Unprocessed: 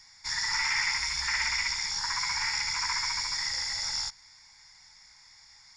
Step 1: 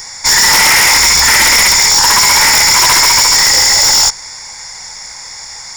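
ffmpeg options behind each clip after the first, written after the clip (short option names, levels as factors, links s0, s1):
-af "equalizer=f=500:t=o:w=1.5:g=12.5,aexciter=amount=4:drive=3.1:freq=6300,aeval=exprs='0.224*sin(PI/2*3.55*val(0)/0.224)':c=same,volume=2.66"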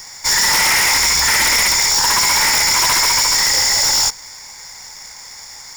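-af "acrusher=bits=2:mode=log:mix=0:aa=0.000001,volume=0.422"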